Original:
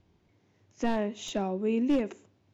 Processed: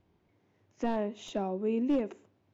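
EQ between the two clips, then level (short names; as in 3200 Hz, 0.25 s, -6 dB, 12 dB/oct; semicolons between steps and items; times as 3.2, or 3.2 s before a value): low shelf 220 Hz -6 dB; dynamic EQ 1900 Hz, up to -4 dB, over -47 dBFS, Q 1.3; high shelf 3400 Hz -11 dB; 0.0 dB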